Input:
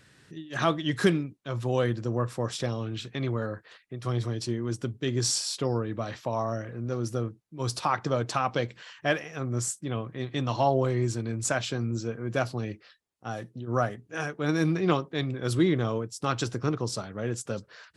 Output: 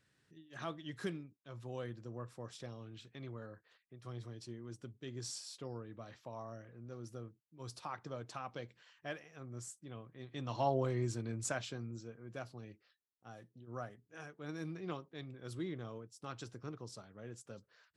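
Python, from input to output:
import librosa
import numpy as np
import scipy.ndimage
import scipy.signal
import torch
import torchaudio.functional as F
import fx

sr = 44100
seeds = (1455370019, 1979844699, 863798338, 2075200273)

y = fx.gain(x, sr, db=fx.line((10.17, -17.5), (10.67, -9.0), (11.37, -9.0), (12.16, -18.0)))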